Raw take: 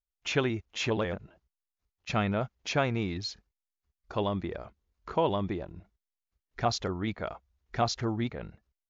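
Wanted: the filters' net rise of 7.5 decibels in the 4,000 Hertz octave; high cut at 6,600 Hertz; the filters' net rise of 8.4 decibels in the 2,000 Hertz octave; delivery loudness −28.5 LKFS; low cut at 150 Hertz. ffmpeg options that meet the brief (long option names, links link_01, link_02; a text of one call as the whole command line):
ffmpeg -i in.wav -af "highpass=150,lowpass=6600,equalizer=frequency=2000:width_type=o:gain=9,equalizer=frequency=4000:width_type=o:gain=7,volume=0.5dB" out.wav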